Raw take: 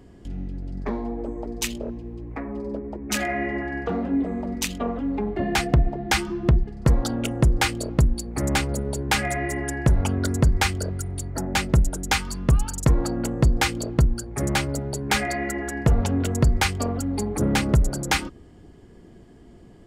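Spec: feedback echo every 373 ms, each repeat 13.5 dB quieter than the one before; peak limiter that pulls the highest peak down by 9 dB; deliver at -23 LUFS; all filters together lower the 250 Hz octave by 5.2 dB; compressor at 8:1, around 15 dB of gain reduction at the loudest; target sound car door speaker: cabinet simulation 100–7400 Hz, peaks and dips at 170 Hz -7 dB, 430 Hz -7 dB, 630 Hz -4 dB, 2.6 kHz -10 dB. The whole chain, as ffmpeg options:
-af "equalizer=f=250:t=o:g=-4,acompressor=threshold=0.0316:ratio=8,alimiter=level_in=1.19:limit=0.0631:level=0:latency=1,volume=0.841,highpass=100,equalizer=f=170:t=q:w=4:g=-7,equalizer=f=430:t=q:w=4:g=-7,equalizer=f=630:t=q:w=4:g=-4,equalizer=f=2600:t=q:w=4:g=-10,lowpass=f=7400:w=0.5412,lowpass=f=7400:w=1.3066,aecho=1:1:373|746:0.211|0.0444,volume=6.31"

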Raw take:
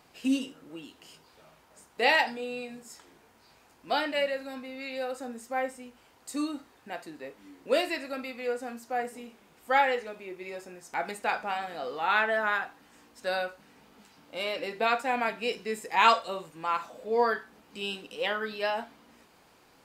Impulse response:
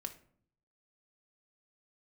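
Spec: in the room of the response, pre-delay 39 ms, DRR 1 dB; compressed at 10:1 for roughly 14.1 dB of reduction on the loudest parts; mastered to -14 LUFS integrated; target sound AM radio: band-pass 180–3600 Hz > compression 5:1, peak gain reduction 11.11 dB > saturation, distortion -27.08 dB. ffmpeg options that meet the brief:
-filter_complex "[0:a]acompressor=threshold=0.0316:ratio=10,asplit=2[s0][s1];[1:a]atrim=start_sample=2205,adelay=39[s2];[s1][s2]afir=irnorm=-1:irlink=0,volume=1.19[s3];[s0][s3]amix=inputs=2:normalize=0,highpass=180,lowpass=3600,acompressor=threshold=0.0126:ratio=5,asoftclip=threshold=0.0398,volume=26.6"

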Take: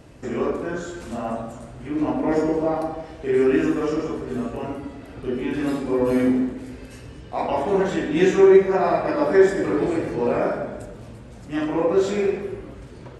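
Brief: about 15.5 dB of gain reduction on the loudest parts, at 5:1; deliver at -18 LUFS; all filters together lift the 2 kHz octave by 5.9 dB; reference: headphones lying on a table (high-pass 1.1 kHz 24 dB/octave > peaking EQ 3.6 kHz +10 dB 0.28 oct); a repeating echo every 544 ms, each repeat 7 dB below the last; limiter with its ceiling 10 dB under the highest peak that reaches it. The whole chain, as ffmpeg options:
-af "equalizer=f=2000:t=o:g=7,acompressor=threshold=0.0447:ratio=5,alimiter=level_in=1.26:limit=0.0631:level=0:latency=1,volume=0.794,highpass=f=1100:w=0.5412,highpass=f=1100:w=1.3066,equalizer=f=3600:t=o:w=0.28:g=10,aecho=1:1:544|1088|1632|2176|2720:0.447|0.201|0.0905|0.0407|0.0183,volume=15"

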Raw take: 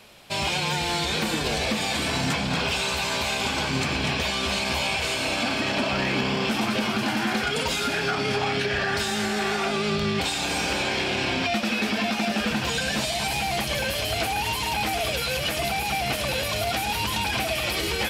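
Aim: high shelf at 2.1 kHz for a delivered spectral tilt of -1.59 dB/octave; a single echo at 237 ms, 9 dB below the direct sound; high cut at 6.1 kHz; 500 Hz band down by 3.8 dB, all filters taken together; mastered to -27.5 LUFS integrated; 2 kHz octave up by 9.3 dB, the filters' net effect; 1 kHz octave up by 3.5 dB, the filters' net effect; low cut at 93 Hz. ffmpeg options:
-af "highpass=93,lowpass=6100,equalizer=f=500:t=o:g=-8,equalizer=f=1000:t=o:g=4,equalizer=f=2000:t=o:g=6,highshelf=f=2100:g=8.5,aecho=1:1:237:0.355,volume=0.316"

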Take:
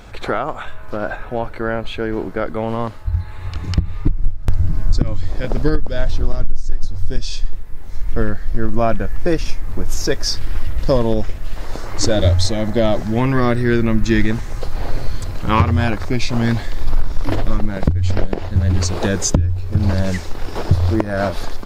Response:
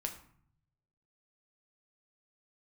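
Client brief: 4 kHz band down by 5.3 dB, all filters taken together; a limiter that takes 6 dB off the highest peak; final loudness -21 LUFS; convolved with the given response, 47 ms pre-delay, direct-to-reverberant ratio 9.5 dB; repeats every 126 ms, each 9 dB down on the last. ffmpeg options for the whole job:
-filter_complex "[0:a]equalizer=f=4000:t=o:g=-7,alimiter=limit=0.316:level=0:latency=1,aecho=1:1:126|252|378|504:0.355|0.124|0.0435|0.0152,asplit=2[s0][s1];[1:a]atrim=start_sample=2205,adelay=47[s2];[s1][s2]afir=irnorm=-1:irlink=0,volume=0.335[s3];[s0][s3]amix=inputs=2:normalize=0,volume=1.19"

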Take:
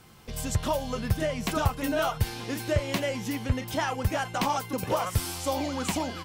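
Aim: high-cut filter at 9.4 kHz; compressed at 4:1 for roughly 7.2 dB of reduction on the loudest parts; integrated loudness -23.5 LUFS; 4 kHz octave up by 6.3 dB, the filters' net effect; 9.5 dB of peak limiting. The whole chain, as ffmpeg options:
-af "lowpass=9400,equalizer=f=4000:t=o:g=8.5,acompressor=threshold=0.0398:ratio=4,volume=3.35,alimiter=limit=0.211:level=0:latency=1"

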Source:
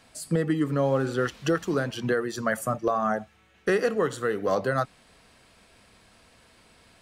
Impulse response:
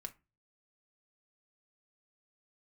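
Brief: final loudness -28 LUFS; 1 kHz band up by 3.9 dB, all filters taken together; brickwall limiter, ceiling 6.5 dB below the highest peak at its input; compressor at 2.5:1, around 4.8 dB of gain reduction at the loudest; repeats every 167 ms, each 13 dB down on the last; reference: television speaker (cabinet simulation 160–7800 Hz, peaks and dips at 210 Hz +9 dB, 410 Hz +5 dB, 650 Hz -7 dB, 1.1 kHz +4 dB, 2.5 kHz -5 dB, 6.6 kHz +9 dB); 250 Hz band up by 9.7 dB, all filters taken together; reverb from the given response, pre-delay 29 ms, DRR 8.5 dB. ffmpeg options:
-filter_complex "[0:a]equalizer=f=250:t=o:g=8,equalizer=f=1000:t=o:g=3,acompressor=threshold=0.0708:ratio=2.5,alimiter=limit=0.119:level=0:latency=1,aecho=1:1:167|334|501:0.224|0.0493|0.0108,asplit=2[s0][s1];[1:a]atrim=start_sample=2205,adelay=29[s2];[s1][s2]afir=irnorm=-1:irlink=0,volume=0.596[s3];[s0][s3]amix=inputs=2:normalize=0,highpass=f=160:w=0.5412,highpass=f=160:w=1.3066,equalizer=f=210:t=q:w=4:g=9,equalizer=f=410:t=q:w=4:g=5,equalizer=f=650:t=q:w=4:g=-7,equalizer=f=1100:t=q:w=4:g=4,equalizer=f=2500:t=q:w=4:g=-5,equalizer=f=6600:t=q:w=4:g=9,lowpass=f=7800:w=0.5412,lowpass=f=7800:w=1.3066,volume=0.75"

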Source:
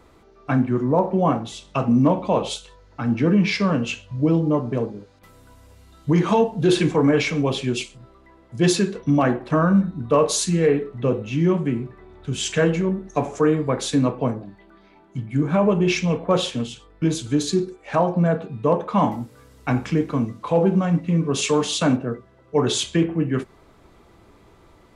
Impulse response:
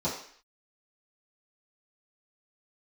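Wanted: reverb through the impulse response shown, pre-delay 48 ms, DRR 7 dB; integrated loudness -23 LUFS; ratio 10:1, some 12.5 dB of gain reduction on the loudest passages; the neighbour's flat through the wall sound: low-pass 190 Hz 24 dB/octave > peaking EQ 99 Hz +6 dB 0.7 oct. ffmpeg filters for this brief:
-filter_complex "[0:a]acompressor=threshold=0.0501:ratio=10,asplit=2[s0][s1];[1:a]atrim=start_sample=2205,adelay=48[s2];[s1][s2]afir=irnorm=-1:irlink=0,volume=0.168[s3];[s0][s3]amix=inputs=2:normalize=0,lowpass=f=190:w=0.5412,lowpass=f=190:w=1.3066,equalizer=f=99:t=o:w=0.7:g=6,volume=2.99"

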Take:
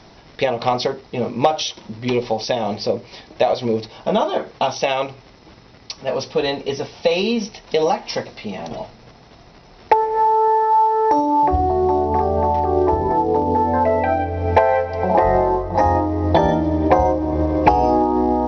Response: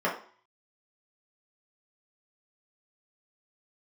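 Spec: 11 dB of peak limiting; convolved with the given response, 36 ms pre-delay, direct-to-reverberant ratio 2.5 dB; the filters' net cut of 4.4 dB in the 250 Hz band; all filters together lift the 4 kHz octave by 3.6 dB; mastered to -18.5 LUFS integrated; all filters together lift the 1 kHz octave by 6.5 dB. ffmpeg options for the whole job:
-filter_complex "[0:a]equalizer=f=250:t=o:g=-7,equalizer=f=1000:t=o:g=8.5,equalizer=f=4000:t=o:g=4,alimiter=limit=0.501:level=0:latency=1,asplit=2[s0][s1];[1:a]atrim=start_sample=2205,adelay=36[s2];[s1][s2]afir=irnorm=-1:irlink=0,volume=0.178[s3];[s0][s3]amix=inputs=2:normalize=0,volume=0.501"

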